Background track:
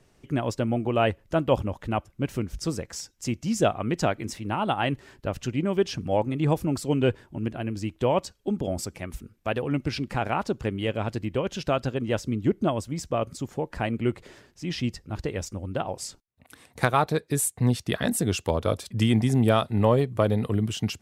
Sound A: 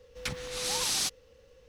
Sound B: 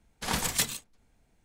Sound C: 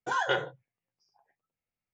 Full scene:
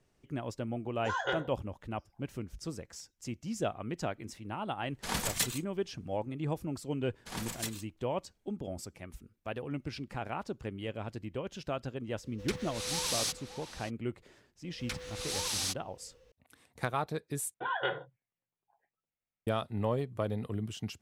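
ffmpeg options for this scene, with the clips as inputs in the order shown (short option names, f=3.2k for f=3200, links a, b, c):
-filter_complex "[3:a]asplit=2[a][b];[2:a]asplit=2[c][d];[1:a]asplit=2[e][f];[0:a]volume=-11dB[g];[e]asplit=2[h][i];[i]adelay=577.3,volume=-10dB,highshelf=f=4k:g=-13[j];[h][j]amix=inputs=2:normalize=0[k];[b]aresample=8000,aresample=44100[l];[g]asplit=2[m][n];[m]atrim=end=17.544[o];[l]atrim=end=1.93,asetpts=PTS-STARTPTS,volume=-5dB[p];[n]atrim=start=19.466[q];[a]atrim=end=1.93,asetpts=PTS-STARTPTS,volume=-5.5dB,afade=t=in:d=0.004:c=hsin,afade=t=out:st=1.926:d=0.004:c=hsin,adelay=980[r];[c]atrim=end=1.44,asetpts=PTS-STARTPTS,volume=-4dB,afade=t=in:d=0.004:c=hsin,afade=t=out:st=1.436:d=0.004:c=hsin,adelay=212121S[s];[d]atrim=end=1.44,asetpts=PTS-STARTPTS,volume=-11dB,afade=t=in:d=0.004:c=hsin,afade=t=out:st=1.436:d=0.004:c=hsin,adelay=7040[t];[k]atrim=end=1.68,asetpts=PTS-STARTPTS,volume=-3.5dB,afade=t=in:d=0.004:c=hsin,afade=t=out:st=1.676:d=0.004:c=hsin,adelay=12230[u];[f]atrim=end=1.68,asetpts=PTS-STARTPTS,volume=-4.5dB,afade=t=in:d=0.004:c=hsin,afade=t=out:st=1.676:d=0.004:c=hsin,adelay=14640[v];[o][p]acrossfade=d=0.004:c1=hsin:c2=hsin[w];[w][q]acrossfade=d=0.004:c1=hsin:c2=hsin[x];[x][r][s][t][u][v]amix=inputs=6:normalize=0"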